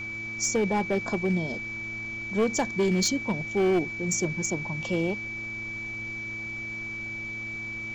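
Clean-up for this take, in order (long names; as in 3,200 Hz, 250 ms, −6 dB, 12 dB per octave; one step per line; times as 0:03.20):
clipped peaks rebuilt −19 dBFS
hum removal 111.3 Hz, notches 3
notch filter 2,300 Hz, Q 30
broadband denoise 30 dB, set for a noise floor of −35 dBFS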